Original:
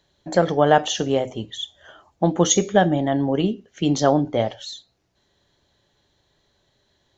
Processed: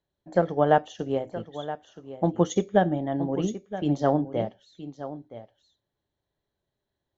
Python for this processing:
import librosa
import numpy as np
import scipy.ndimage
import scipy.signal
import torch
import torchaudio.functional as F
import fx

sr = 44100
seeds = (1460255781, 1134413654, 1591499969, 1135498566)

p1 = fx.high_shelf(x, sr, hz=2200.0, db=-11.0)
p2 = p1 + fx.echo_single(p1, sr, ms=971, db=-9.0, dry=0)
p3 = fx.upward_expand(p2, sr, threshold_db=-39.0, expansion=1.5)
y = p3 * 10.0 ** (-2.5 / 20.0)